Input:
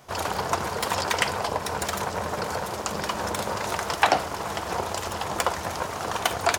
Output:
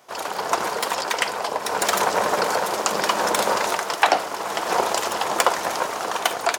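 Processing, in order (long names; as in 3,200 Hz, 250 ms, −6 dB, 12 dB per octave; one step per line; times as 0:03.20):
high-pass filter 300 Hz 12 dB per octave
automatic gain control gain up to 12 dB
level −1 dB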